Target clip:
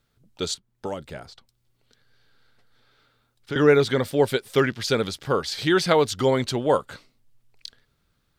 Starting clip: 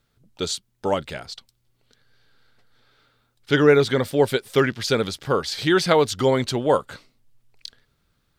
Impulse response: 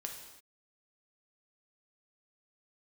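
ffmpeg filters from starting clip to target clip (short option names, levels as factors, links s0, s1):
-filter_complex "[0:a]asettb=1/sr,asplit=3[s0][s1][s2];[s0]atrim=end=0.544[s3];[s1]atrim=start=0.54:end=3.56,asetpts=PTS-STARTPTS,afade=t=in:d=0.004:c=qsin,afade=t=out:st=3.016:d=0.004:c=qsin,acrossover=split=570|1800|4800[s4][s5][s6][s7];[s4]acompressor=threshold=0.0316:ratio=4[s8];[s5]acompressor=threshold=0.0178:ratio=4[s9];[s6]acompressor=threshold=0.00282:ratio=4[s10];[s7]acompressor=threshold=0.00224:ratio=4[s11];[s8][s9][s10][s11]amix=inputs=4:normalize=0[s12];[s2]atrim=start=3.556[s13];[s3][s12]acrossfade=d=0.004:c1=hsin:c2=qsin[s14];[s14][s13]acrossfade=d=0.004:c1=qsin:c2=hsin,volume=0.841"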